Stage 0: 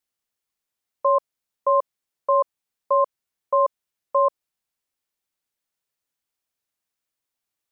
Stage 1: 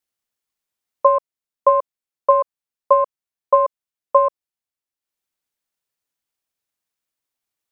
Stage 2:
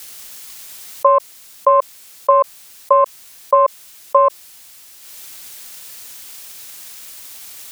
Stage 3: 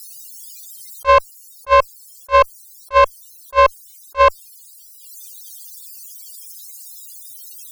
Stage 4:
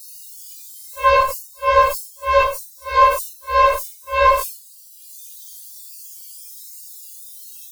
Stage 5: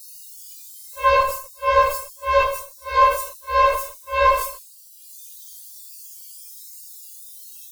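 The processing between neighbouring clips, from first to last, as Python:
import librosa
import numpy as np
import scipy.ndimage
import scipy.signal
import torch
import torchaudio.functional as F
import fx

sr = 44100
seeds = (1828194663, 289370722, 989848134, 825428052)

y1 = fx.transient(x, sr, attack_db=9, sustain_db=-7)
y2 = fx.high_shelf(y1, sr, hz=2000.0, db=10.5)
y2 = fx.env_flatten(y2, sr, amount_pct=70)
y2 = F.gain(torch.from_numpy(y2), -1.5).numpy()
y3 = fx.spec_topn(y2, sr, count=64)
y3 = fx.tube_stage(y3, sr, drive_db=14.0, bias=0.35)
y3 = fx.attack_slew(y3, sr, db_per_s=490.0)
y3 = F.gain(torch.from_numpy(y3), 8.5).numpy()
y4 = fx.phase_scramble(y3, sr, seeds[0], window_ms=200)
y4 = fx.sustainer(y4, sr, db_per_s=110.0)
y4 = F.gain(torch.from_numpy(y4), -1.0).numpy()
y5 = y4 + 10.0 ** (-16.5 / 20.0) * np.pad(y4, (int(153 * sr / 1000.0), 0))[:len(y4)]
y5 = F.gain(torch.from_numpy(y5), -2.5).numpy()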